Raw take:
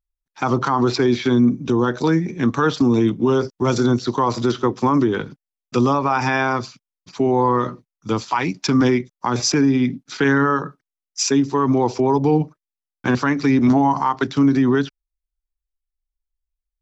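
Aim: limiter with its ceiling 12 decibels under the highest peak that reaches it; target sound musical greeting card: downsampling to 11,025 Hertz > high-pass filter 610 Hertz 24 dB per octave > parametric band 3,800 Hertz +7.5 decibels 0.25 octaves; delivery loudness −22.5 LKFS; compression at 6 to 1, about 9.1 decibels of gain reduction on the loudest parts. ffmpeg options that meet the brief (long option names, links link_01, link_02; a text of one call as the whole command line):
ffmpeg -i in.wav -af "acompressor=threshold=-22dB:ratio=6,alimiter=limit=-21.5dB:level=0:latency=1,aresample=11025,aresample=44100,highpass=frequency=610:width=0.5412,highpass=frequency=610:width=1.3066,equalizer=frequency=3800:width_type=o:width=0.25:gain=7.5,volume=14dB" out.wav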